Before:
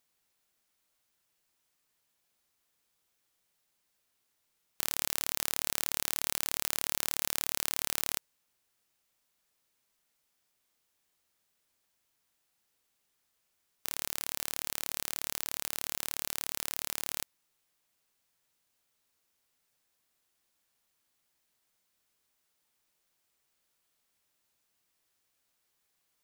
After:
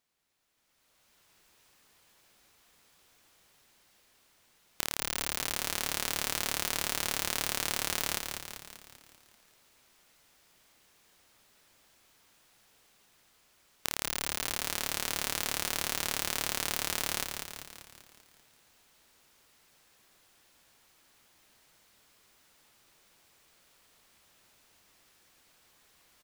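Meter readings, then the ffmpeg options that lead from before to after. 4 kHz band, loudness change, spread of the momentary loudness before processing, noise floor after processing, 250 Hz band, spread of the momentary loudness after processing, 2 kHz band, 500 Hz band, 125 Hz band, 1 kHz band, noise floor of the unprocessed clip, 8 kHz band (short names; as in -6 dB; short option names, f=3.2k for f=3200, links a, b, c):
+4.5 dB, +1.0 dB, 5 LU, -67 dBFS, +6.5 dB, 9 LU, +6.0 dB, +6.5 dB, +6.5 dB, +6.0 dB, -78 dBFS, +2.0 dB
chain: -filter_complex "[0:a]acompressor=threshold=-36dB:ratio=6,highshelf=f=7.1k:g=-8,asplit=8[a][b][c][d][e][f][g][h];[b]adelay=195,afreqshift=-69,volume=-5.5dB[i];[c]adelay=390,afreqshift=-138,volume=-10.9dB[j];[d]adelay=585,afreqshift=-207,volume=-16.2dB[k];[e]adelay=780,afreqshift=-276,volume=-21.6dB[l];[f]adelay=975,afreqshift=-345,volume=-26.9dB[m];[g]adelay=1170,afreqshift=-414,volume=-32.3dB[n];[h]adelay=1365,afreqshift=-483,volume=-37.6dB[o];[a][i][j][k][l][m][n][o]amix=inputs=8:normalize=0,dynaudnorm=f=270:g=7:m=15.5dB"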